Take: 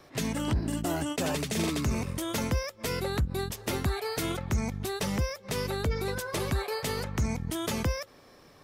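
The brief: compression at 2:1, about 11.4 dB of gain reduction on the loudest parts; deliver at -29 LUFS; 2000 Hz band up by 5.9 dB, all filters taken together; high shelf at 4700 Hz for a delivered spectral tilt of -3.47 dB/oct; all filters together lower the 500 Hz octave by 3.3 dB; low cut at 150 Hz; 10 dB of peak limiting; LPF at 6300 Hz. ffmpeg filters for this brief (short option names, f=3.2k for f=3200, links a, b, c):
-af "highpass=150,lowpass=6.3k,equalizer=f=500:t=o:g=-4.5,equalizer=f=2k:t=o:g=8.5,highshelf=f=4.7k:g=-6,acompressor=threshold=-49dB:ratio=2,volume=16dB,alimiter=limit=-19.5dB:level=0:latency=1"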